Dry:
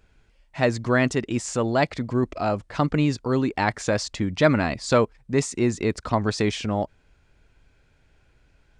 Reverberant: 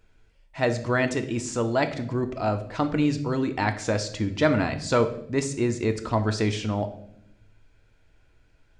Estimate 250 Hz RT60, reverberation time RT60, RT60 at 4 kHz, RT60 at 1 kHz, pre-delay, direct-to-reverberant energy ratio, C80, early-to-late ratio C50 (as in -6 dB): 1.2 s, 0.70 s, 0.60 s, 0.60 s, 3 ms, 7.5 dB, 16.0 dB, 12.5 dB